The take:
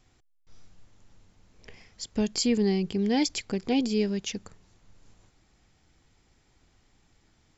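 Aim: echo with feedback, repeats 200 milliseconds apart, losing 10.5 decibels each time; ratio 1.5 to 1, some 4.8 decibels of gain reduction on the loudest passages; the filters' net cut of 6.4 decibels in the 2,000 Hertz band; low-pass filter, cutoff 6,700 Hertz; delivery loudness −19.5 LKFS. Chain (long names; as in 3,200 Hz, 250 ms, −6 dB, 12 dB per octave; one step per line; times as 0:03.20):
low-pass filter 6,700 Hz
parametric band 2,000 Hz −8 dB
downward compressor 1.5 to 1, threshold −34 dBFS
repeating echo 200 ms, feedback 30%, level −10.5 dB
level +12.5 dB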